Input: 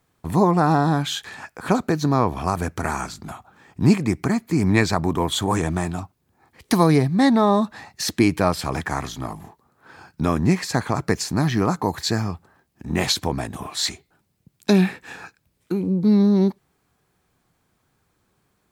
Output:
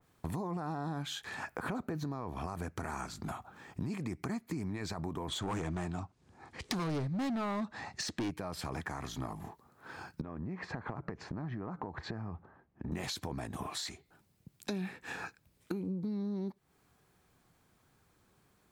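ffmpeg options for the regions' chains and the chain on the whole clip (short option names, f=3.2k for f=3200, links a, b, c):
-filter_complex "[0:a]asettb=1/sr,asplit=3[a][b][c];[a]atrim=end=1.474[d];[b]atrim=start=1.47:end=2.04,asetpts=PTS-STARTPTS,afade=t=in:d=0.004:c=qsin,afade=t=out:st=0.566:d=0.004:c=qsin,equalizer=f=5.9k:t=o:w=2:g=-7.5,acontrast=31[e];[c]atrim=start=2.036[f];[d][e]acrossfade=d=0.004:c1=hsin:c2=qsin[g];[g][f]acrossfade=d=0.004:c1=qsin:c2=hsin,asettb=1/sr,asplit=3[h][i][j];[h]atrim=end=5.284[k];[i]atrim=start=5.28:end=8.31,asetpts=PTS-STARTPTS,afade=t=in:d=0.004:c=qsin,afade=t=out:st=3.026:d=0.004:c=qsin,lowpass=f=8.3k:w=0.5412,lowpass=f=8.3k:w=1.3066,acontrast=46,asoftclip=type=hard:threshold=-13.5dB[l];[j]atrim=start=8.306[m];[k][l]acrossfade=d=0.004:c1=hsin:c2=qsin[n];[n][m]acrossfade=d=0.004:c1=qsin:c2=hsin,asettb=1/sr,asplit=3[o][p][q];[o]atrim=end=10.214[r];[p]atrim=start=10.21:end=12.92,asetpts=PTS-STARTPTS,afade=t=in:d=0.004:c=qsin,afade=t=out:st=2.706:d=0.004:c=qsin,lowpass=1.5k,acompressor=threshold=-31dB:ratio=8:attack=3.2:release=140:knee=1:detection=peak[s];[q]atrim=start=12.916[t];[r][s]acrossfade=d=0.004:c1=hsin:c2=qsin[u];[u][t]acrossfade=d=0.004:c1=qsin:c2=hsin,alimiter=limit=-14dB:level=0:latency=1:release=19,acompressor=threshold=-34dB:ratio=6,adynamicequalizer=threshold=0.00251:dfrequency=2300:dqfactor=0.7:tfrequency=2300:tqfactor=0.7:attack=5:release=100:ratio=0.375:range=1.5:mode=cutabove:tftype=highshelf,volume=-1.5dB"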